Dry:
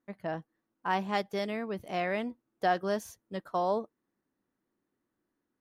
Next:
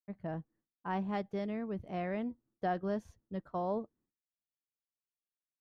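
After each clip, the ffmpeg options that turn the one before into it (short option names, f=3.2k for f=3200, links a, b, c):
-af "aemphasis=mode=reproduction:type=riaa,agate=range=-33dB:threshold=-56dB:ratio=3:detection=peak,volume=-8dB"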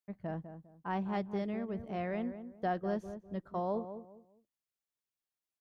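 -filter_complex "[0:a]asplit=2[a][b];[b]adelay=201,lowpass=f=1.1k:p=1,volume=-9.5dB,asplit=2[c][d];[d]adelay=201,lowpass=f=1.1k:p=1,volume=0.29,asplit=2[e][f];[f]adelay=201,lowpass=f=1.1k:p=1,volume=0.29[g];[a][c][e][g]amix=inputs=4:normalize=0"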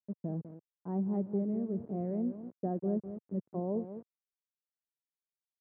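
-af "aeval=exprs='val(0)*gte(abs(val(0)),0.00531)':c=same,asuperpass=centerf=230:order=4:qfactor=0.69,volume=4.5dB"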